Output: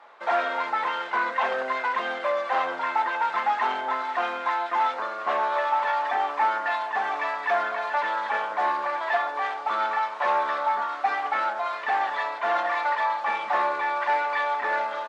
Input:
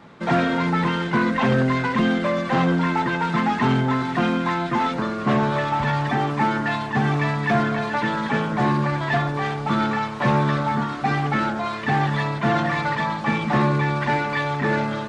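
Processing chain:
high-pass filter 670 Hz 24 dB per octave
spectral tilt −3.5 dB per octave
double-tracking delay 31 ms −12 dB

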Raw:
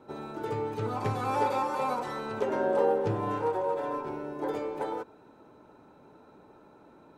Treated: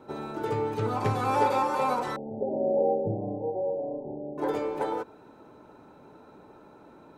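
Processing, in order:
0:02.16–0:04.38: Chebyshev low-pass with heavy ripple 830 Hz, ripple 6 dB
level +3.5 dB

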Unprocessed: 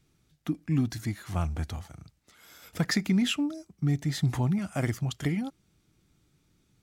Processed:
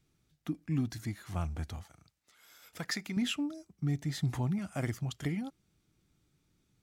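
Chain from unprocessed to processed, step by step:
0:01.83–0:03.17: low-shelf EQ 390 Hz −11 dB
level −5.5 dB

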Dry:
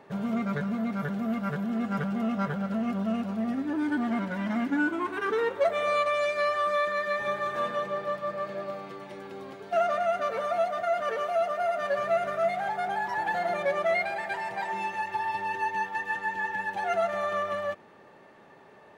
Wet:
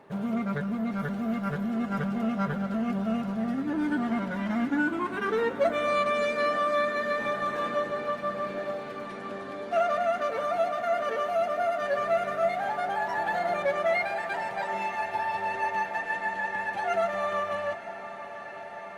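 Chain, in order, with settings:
feedback delay with all-pass diffusion 908 ms, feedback 80%, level −14.5 dB
Opus 32 kbit/s 48,000 Hz

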